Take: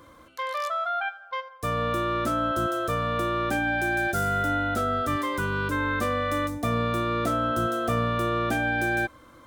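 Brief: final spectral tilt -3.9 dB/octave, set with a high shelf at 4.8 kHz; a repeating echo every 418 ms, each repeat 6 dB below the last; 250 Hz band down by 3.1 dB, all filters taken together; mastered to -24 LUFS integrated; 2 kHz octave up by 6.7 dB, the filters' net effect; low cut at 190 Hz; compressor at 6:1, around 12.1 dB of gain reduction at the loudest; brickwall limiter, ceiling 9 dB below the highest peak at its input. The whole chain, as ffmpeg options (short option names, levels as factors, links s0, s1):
-af "highpass=190,equalizer=f=250:t=o:g=-3,equalizer=f=2000:t=o:g=8.5,highshelf=f=4800:g=7,acompressor=threshold=0.0224:ratio=6,alimiter=level_in=1.78:limit=0.0631:level=0:latency=1,volume=0.562,aecho=1:1:418|836|1254|1672|2090|2508:0.501|0.251|0.125|0.0626|0.0313|0.0157,volume=3.35"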